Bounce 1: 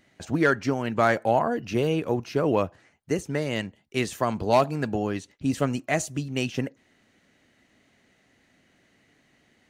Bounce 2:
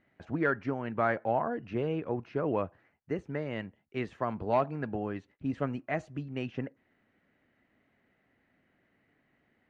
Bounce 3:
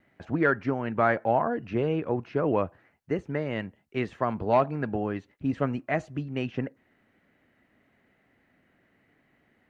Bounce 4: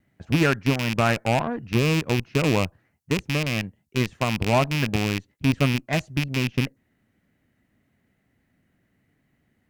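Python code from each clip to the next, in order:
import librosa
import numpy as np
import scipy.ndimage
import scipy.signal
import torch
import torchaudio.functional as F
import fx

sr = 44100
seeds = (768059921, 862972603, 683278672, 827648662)

y1 = scipy.signal.sosfilt(scipy.signal.cheby1(2, 1.0, 1800.0, 'lowpass', fs=sr, output='sos'), x)
y1 = y1 * librosa.db_to_amplitude(-6.5)
y2 = fx.vibrato(y1, sr, rate_hz=1.0, depth_cents=16.0)
y2 = y2 * librosa.db_to_amplitude(5.0)
y3 = fx.rattle_buzz(y2, sr, strikes_db=-32.0, level_db=-18.0)
y3 = fx.bass_treble(y3, sr, bass_db=12, treble_db=12)
y3 = fx.cheby_harmonics(y3, sr, harmonics=(7,), levels_db=(-22,), full_scale_db=-8.5)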